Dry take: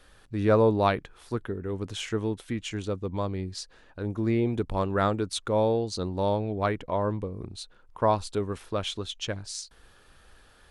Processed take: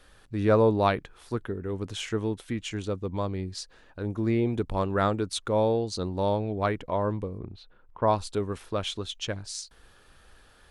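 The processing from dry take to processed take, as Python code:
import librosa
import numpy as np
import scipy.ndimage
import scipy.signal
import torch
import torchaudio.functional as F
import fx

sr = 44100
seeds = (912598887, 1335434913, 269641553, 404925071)

y = fx.air_absorb(x, sr, metres=330.0, at=(7.37, 8.06), fade=0.02)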